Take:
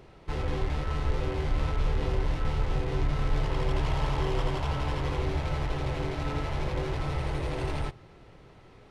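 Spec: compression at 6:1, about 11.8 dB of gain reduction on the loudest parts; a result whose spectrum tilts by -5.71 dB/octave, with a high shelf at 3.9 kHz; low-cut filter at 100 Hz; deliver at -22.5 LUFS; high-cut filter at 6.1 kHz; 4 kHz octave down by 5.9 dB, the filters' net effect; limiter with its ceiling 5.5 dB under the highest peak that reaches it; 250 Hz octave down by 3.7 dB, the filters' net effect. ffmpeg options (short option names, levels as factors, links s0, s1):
-af "highpass=100,lowpass=6100,equalizer=f=250:t=o:g=-6,highshelf=f=3900:g=-6,equalizer=f=4000:t=o:g=-4,acompressor=threshold=0.00708:ratio=6,volume=20,alimiter=limit=0.237:level=0:latency=1"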